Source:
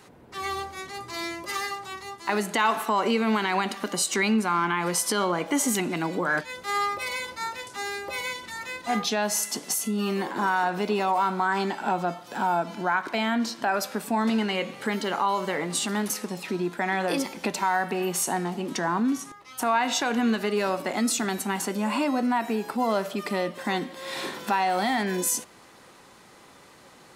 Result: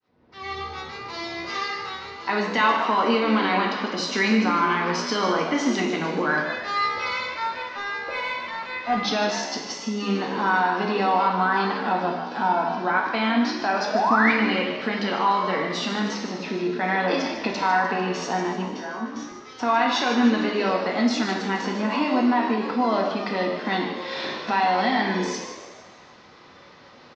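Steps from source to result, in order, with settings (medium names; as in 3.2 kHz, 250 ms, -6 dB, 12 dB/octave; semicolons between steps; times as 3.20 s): fade-in on the opening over 0.73 s; steep low-pass 5.6 kHz 48 dB/octave; 7.27–8.97 s: overdrive pedal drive 11 dB, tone 1.2 kHz, clips at -14.5 dBFS; 13.93–14.32 s: painted sound rise 600–2500 Hz -23 dBFS; 18.65–19.16 s: feedback comb 75 Hz, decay 0.39 s, harmonics all, mix 100%; frequency-shifting echo 150 ms, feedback 50%, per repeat +69 Hz, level -10 dB; reverberation, pre-delay 3 ms, DRR 0.5 dB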